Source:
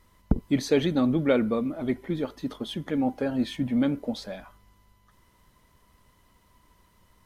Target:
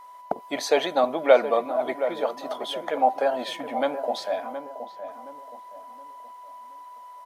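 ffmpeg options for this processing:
-filter_complex "[0:a]highpass=f=690:t=q:w=4.4,aeval=exprs='val(0)+0.00447*sin(2*PI*990*n/s)':c=same,asplit=2[s0][s1];[s1]adelay=721,lowpass=f=1100:p=1,volume=0.355,asplit=2[s2][s3];[s3]adelay=721,lowpass=f=1100:p=1,volume=0.39,asplit=2[s4][s5];[s5]adelay=721,lowpass=f=1100:p=1,volume=0.39,asplit=2[s6][s7];[s7]adelay=721,lowpass=f=1100:p=1,volume=0.39[s8];[s0][s2][s4][s6][s8]amix=inputs=5:normalize=0,volume=1.58"

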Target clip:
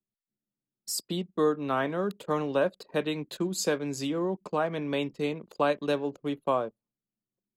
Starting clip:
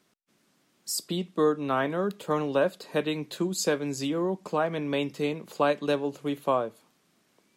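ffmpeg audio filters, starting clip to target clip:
-af "anlmdn=0.1,volume=0.841"

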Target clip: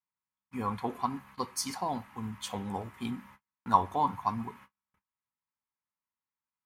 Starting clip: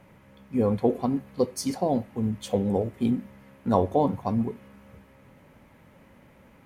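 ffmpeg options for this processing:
-af "agate=range=0.00794:threshold=0.00631:ratio=16:detection=peak,lowshelf=f=740:t=q:w=3:g=-10.5"

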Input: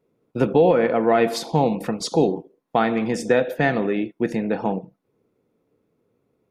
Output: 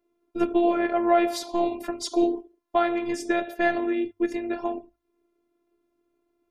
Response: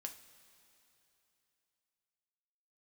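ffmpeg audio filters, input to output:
-af "afftfilt=real='hypot(re,im)*cos(PI*b)':imag='0':win_size=512:overlap=0.75,bandreject=f=50:t=h:w=6,bandreject=f=100:t=h:w=6"

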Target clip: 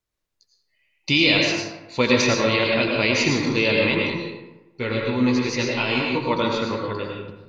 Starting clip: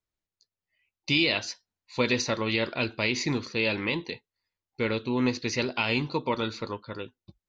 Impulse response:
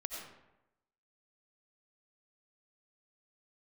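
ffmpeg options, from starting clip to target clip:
-filter_complex "[0:a]asettb=1/sr,asplit=3[s0][s1][s2];[s0]atrim=end=3.994[s3];[s1]atrim=start=3.99:end=6.31,asetpts=PTS-STARTPTS,afade=t=in:d=0.004:c=qsin,afade=t=out:st=2.316:d=0.004:c=qsin,flanger=delay=15:depth=2.5:speed=2.6[s4];[s2]atrim=start=6.306[s5];[s3][s4]acrossfade=d=0.004:c1=hsin:c2=qsin[s6];[s6][s5]acrossfade=d=0.004:c1=qsin:c2=hsin[s7];[1:a]atrim=start_sample=2205,asetrate=37926,aresample=44100[s8];[s7][s8]afir=irnorm=-1:irlink=0,volume=2.37"

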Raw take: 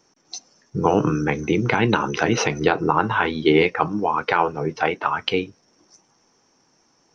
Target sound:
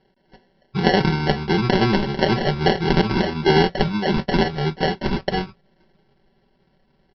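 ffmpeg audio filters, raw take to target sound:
-af "asubboost=boost=6:cutoff=110,aresample=8000,aresample=44100,aresample=11025,acrusher=samples=9:mix=1:aa=0.000001,aresample=44100,aecho=1:1:5.2:0.74"

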